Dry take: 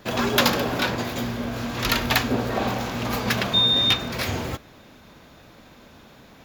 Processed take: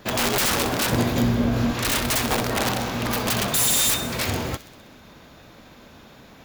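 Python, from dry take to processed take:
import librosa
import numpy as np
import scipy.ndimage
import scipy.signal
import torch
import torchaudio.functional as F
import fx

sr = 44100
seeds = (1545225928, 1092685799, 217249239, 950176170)

p1 = (np.mod(10.0 ** (17.5 / 20.0) * x + 1.0, 2.0) - 1.0) / 10.0 ** (17.5 / 20.0)
p2 = fx.low_shelf(p1, sr, hz=440.0, db=8.5, at=(0.92, 1.73))
p3 = p2 + fx.echo_wet_highpass(p2, sr, ms=64, feedback_pct=66, hz=3000.0, wet_db=-13.0, dry=0)
y = p3 * librosa.db_to_amplitude(1.5)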